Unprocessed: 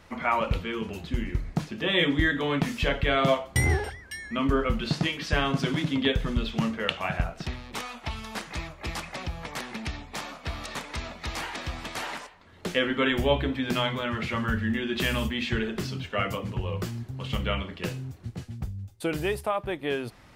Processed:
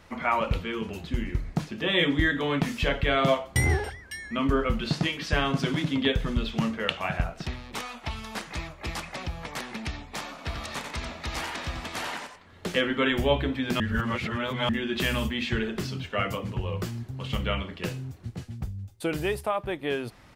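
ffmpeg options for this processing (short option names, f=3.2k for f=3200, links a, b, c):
-filter_complex "[0:a]asplit=3[a][b][c];[a]afade=t=out:st=10.37:d=0.02[d];[b]aecho=1:1:90:0.501,afade=t=in:st=10.37:d=0.02,afade=t=out:st=12.8:d=0.02[e];[c]afade=t=in:st=12.8:d=0.02[f];[d][e][f]amix=inputs=3:normalize=0,asplit=3[g][h][i];[g]atrim=end=13.802[j];[h]atrim=start=13.798:end=14.692,asetpts=PTS-STARTPTS,areverse[k];[i]atrim=start=14.688[l];[j][k]acrossfade=d=0.004:c1=hsin:c2=hsin[m];[m][l]acrossfade=d=0.004:c1=hsin:c2=hsin"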